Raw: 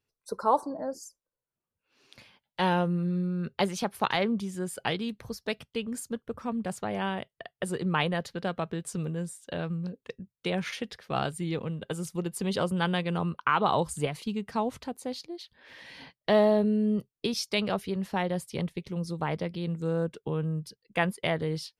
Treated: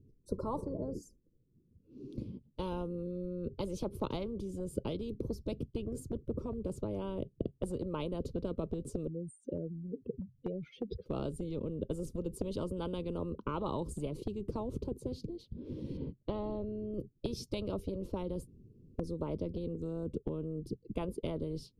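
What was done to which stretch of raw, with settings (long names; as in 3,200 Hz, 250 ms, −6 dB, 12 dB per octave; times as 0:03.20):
0:09.07–0:11.06: expanding power law on the bin magnitudes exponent 2.6
0:15.97–0:16.94: low-pass filter 2,800 Hz
0:18.47–0:18.99: fill with room tone
whole clip: inverse Chebyshev low-pass filter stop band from 680 Hz, stop band 40 dB; dynamic equaliser 110 Hz, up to −4 dB, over −42 dBFS, Q 1.1; every bin compressed towards the loudest bin 10 to 1; level +3.5 dB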